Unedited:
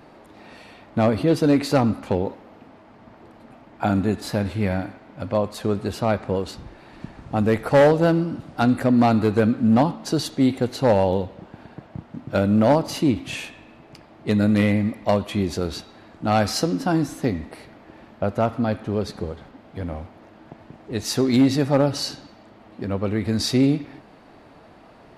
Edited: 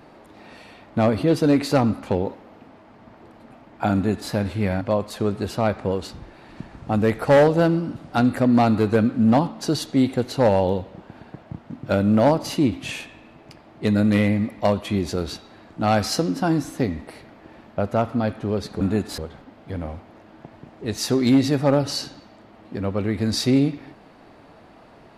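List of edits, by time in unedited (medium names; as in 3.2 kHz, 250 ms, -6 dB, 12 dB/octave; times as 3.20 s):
3.94–4.31 s: copy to 19.25 s
4.81–5.25 s: delete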